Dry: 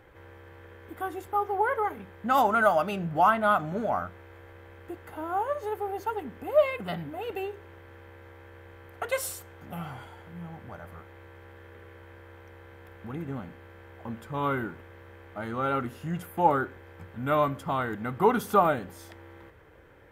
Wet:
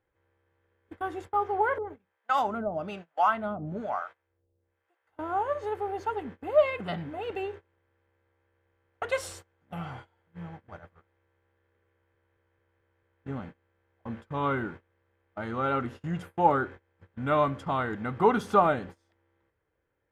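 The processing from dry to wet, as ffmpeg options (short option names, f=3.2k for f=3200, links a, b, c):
-filter_complex "[0:a]asettb=1/sr,asplit=3[a][b][c];[a]atrim=end=1.784[d];[b]atrim=start=1.78:end=5.19,asetpts=PTS-STARTPTS,afade=t=in:d=0.004:c=qsin,afade=t=out:st=3.406:d=0.004:c=qsin,acrossover=split=560[e][f];[e]aeval=exprs='val(0)*(1-1/2+1/2*cos(2*PI*1.1*n/s))':c=same[g];[f]aeval=exprs='val(0)*(1-1/2-1/2*cos(2*PI*1.1*n/s))':c=same[h];[g][h]amix=inputs=2:normalize=0[i];[c]atrim=start=5.186[j];[d][i]acrossfade=d=0.004:c1=hsin:c2=qsin[k];[k][j]acrossfade=d=0.004:c1=qsin:c2=hsin,asplit=7[l][m][n][o][p][q][r];[l]atrim=end=12.152[s];[m]atrim=start=11.928:end=12.152[t];[n]atrim=start=11.928:end=12.152[u];[o]atrim=start=11.928:end=12.152[v];[p]atrim=start=11.928:end=12.152[w];[q]atrim=start=11.928:end=12.152[x];[r]atrim=start=13.248[y];[s][t]acrossfade=d=0.004:c1=hsin:c2=hsin[z];[z][u]acrossfade=d=0.004:c1=hsin:c2=hsin[aa];[aa][v]acrossfade=d=0.004:c1=hsin:c2=hsin[ab];[ab][w]acrossfade=d=0.004:c1=hsin:c2=hsin[ac];[ac][x]acrossfade=d=0.004:c1=hsin:c2=hsin[ad];[ad][y]acrossfade=d=0.004:c1=hsin:c2=hsin,agate=range=-24dB:threshold=-41dB:ratio=16:detection=peak,lowpass=6.3k"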